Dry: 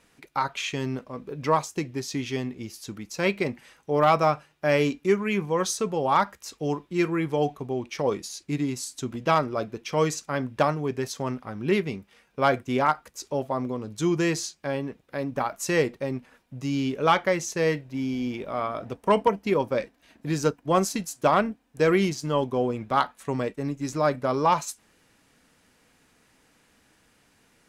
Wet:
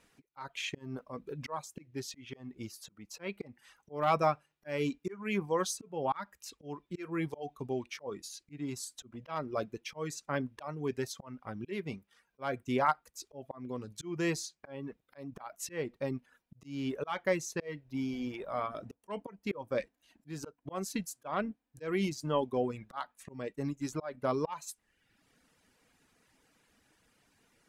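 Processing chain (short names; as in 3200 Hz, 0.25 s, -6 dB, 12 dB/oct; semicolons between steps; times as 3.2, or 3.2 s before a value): dynamic EQ 5900 Hz, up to -3 dB, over -45 dBFS, Q 1.3; auto swell 0.283 s; reverb removal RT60 0.9 s; gain -5 dB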